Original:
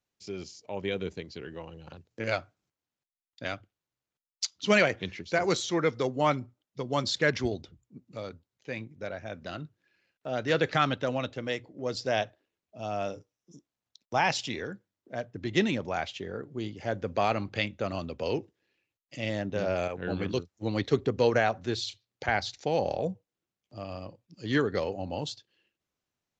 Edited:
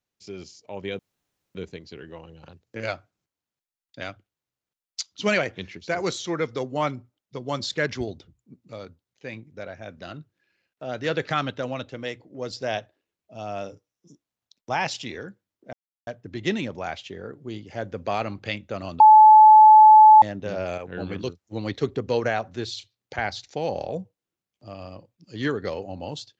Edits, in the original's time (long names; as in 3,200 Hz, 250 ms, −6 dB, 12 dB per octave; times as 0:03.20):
0:00.99: splice in room tone 0.56 s
0:15.17: splice in silence 0.34 s
0:18.10–0:19.32: beep over 863 Hz −7 dBFS